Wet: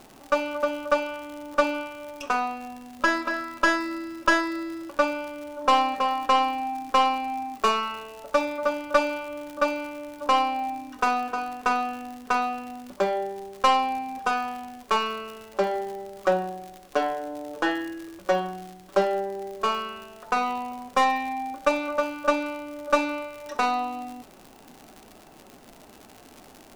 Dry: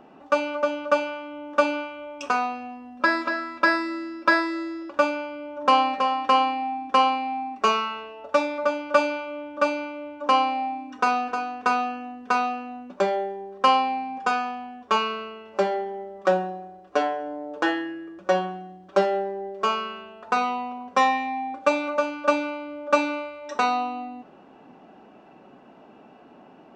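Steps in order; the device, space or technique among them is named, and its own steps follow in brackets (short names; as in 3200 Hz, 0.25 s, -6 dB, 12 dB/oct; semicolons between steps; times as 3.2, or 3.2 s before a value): record under a worn stylus (tracing distortion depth 0.067 ms; crackle 110/s -32 dBFS; pink noise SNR 31 dB); gain -1.5 dB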